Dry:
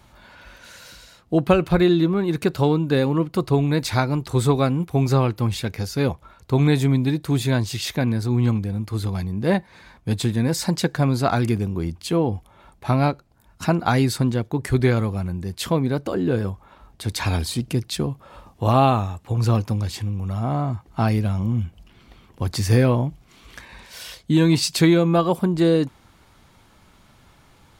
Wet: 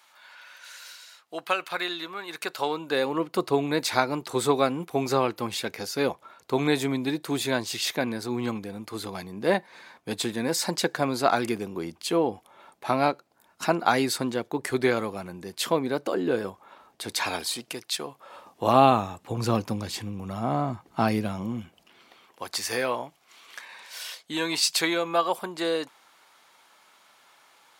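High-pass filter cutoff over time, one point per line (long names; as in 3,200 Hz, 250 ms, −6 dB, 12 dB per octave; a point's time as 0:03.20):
0:02.23 1,100 Hz
0:03.40 350 Hz
0:17.06 350 Hz
0:17.92 760 Hz
0:18.86 210 Hz
0:21.18 210 Hz
0:22.51 690 Hz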